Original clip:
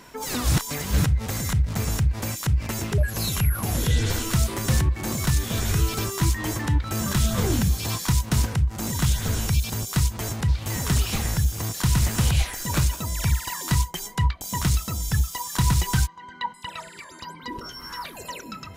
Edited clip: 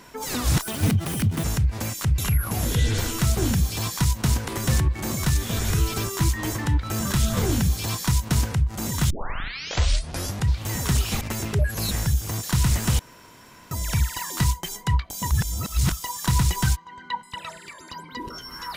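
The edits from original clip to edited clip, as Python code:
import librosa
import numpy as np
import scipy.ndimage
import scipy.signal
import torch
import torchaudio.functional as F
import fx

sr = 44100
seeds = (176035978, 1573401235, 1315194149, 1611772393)

y = fx.edit(x, sr, fx.speed_span(start_s=0.62, length_s=1.24, speed=1.51),
    fx.move(start_s=2.6, length_s=0.7, to_s=11.22),
    fx.duplicate(start_s=7.45, length_s=1.11, to_s=4.49),
    fx.tape_start(start_s=9.11, length_s=1.37),
    fx.room_tone_fill(start_s=12.3, length_s=0.72),
    fx.reverse_span(start_s=14.62, length_s=0.61), tone=tone)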